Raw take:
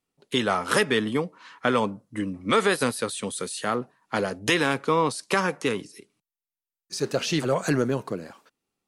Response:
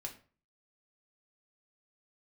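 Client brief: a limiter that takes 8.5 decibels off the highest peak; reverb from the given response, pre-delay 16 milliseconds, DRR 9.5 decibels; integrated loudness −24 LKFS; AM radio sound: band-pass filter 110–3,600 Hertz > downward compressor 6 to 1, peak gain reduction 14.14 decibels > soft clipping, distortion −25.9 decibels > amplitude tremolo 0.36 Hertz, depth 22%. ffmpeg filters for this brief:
-filter_complex "[0:a]alimiter=limit=-15.5dB:level=0:latency=1,asplit=2[link_01][link_02];[1:a]atrim=start_sample=2205,adelay=16[link_03];[link_02][link_03]afir=irnorm=-1:irlink=0,volume=-7dB[link_04];[link_01][link_04]amix=inputs=2:normalize=0,highpass=110,lowpass=3600,acompressor=threshold=-35dB:ratio=6,asoftclip=threshold=-23.5dB,tremolo=f=0.36:d=0.22,volume=17dB"

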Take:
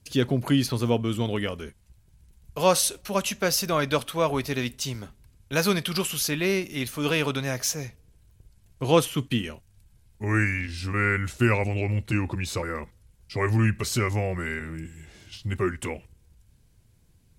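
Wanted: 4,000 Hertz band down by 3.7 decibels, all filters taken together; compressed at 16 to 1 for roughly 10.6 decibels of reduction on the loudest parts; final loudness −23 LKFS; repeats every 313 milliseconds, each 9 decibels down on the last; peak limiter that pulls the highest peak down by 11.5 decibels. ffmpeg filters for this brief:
ffmpeg -i in.wav -af "equalizer=frequency=4000:width_type=o:gain=-5,acompressor=threshold=-25dB:ratio=16,alimiter=level_in=2.5dB:limit=-24dB:level=0:latency=1,volume=-2.5dB,aecho=1:1:313|626|939|1252:0.355|0.124|0.0435|0.0152,volume=13.5dB" out.wav

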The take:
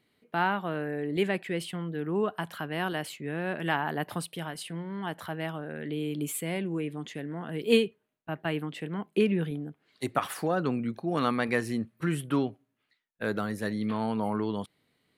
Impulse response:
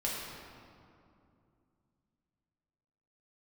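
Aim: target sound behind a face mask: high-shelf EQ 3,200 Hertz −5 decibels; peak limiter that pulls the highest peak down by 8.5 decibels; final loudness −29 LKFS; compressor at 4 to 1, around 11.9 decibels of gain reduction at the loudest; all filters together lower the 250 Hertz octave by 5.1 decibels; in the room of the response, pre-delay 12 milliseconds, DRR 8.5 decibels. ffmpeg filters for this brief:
-filter_complex "[0:a]equalizer=frequency=250:width_type=o:gain=-7,acompressor=threshold=-34dB:ratio=4,alimiter=level_in=3dB:limit=-24dB:level=0:latency=1,volume=-3dB,asplit=2[link_01][link_02];[1:a]atrim=start_sample=2205,adelay=12[link_03];[link_02][link_03]afir=irnorm=-1:irlink=0,volume=-13.5dB[link_04];[link_01][link_04]amix=inputs=2:normalize=0,highshelf=frequency=3200:gain=-5,volume=10.5dB"

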